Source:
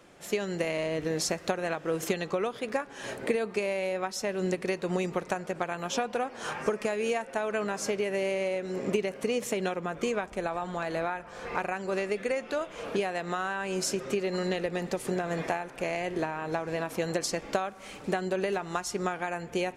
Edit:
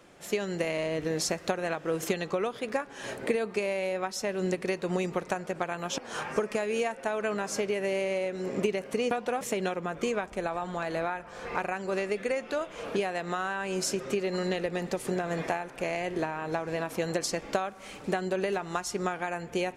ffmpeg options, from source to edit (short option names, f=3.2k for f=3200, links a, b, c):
-filter_complex "[0:a]asplit=4[a][b][c][d];[a]atrim=end=5.982[e];[b]atrim=start=6.278:end=9.412[f];[c]atrim=start=5.978:end=6.282[g];[d]atrim=start=9.408[h];[e][f]acrossfade=d=0.004:c1=hsin:c2=hsin[i];[i][g]acrossfade=d=0.004:c1=hsin:c2=hsin[j];[j][h]acrossfade=d=0.004:c1=hsin:c2=hsin"